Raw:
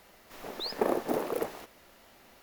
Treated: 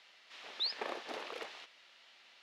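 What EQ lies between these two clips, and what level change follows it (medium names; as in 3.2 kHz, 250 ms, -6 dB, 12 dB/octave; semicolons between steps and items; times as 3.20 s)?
band-pass filter 3.4 kHz, Q 1.5; distance through air 66 m; +5.5 dB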